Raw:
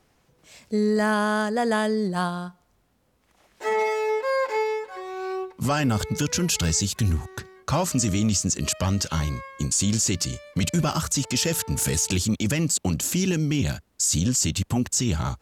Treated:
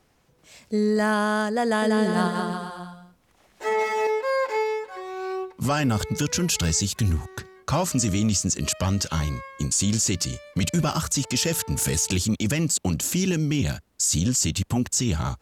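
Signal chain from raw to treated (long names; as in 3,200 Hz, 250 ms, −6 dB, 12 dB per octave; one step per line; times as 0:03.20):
0:01.63–0:04.07: bouncing-ball delay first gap 190 ms, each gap 0.8×, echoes 5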